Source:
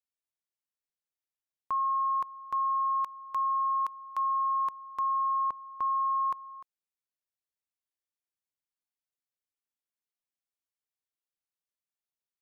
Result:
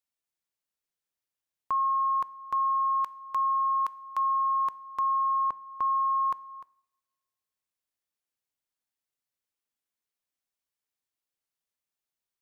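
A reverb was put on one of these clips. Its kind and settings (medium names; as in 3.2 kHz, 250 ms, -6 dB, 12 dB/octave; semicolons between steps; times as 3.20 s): two-slope reverb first 0.65 s, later 1.7 s, from -23 dB, DRR 18.5 dB; trim +3 dB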